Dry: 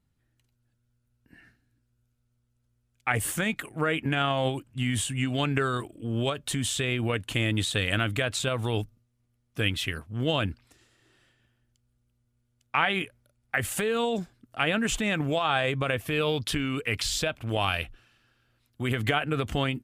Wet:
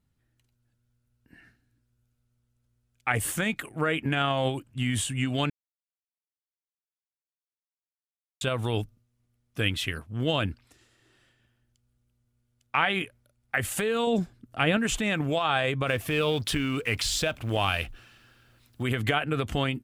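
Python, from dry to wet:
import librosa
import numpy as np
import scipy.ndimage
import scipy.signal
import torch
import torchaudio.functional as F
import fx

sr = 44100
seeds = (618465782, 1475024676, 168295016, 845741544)

y = fx.low_shelf(x, sr, hz=400.0, db=7.0, at=(14.07, 14.77))
y = fx.law_mismatch(y, sr, coded='mu', at=(15.87, 18.83))
y = fx.edit(y, sr, fx.silence(start_s=5.5, length_s=2.91), tone=tone)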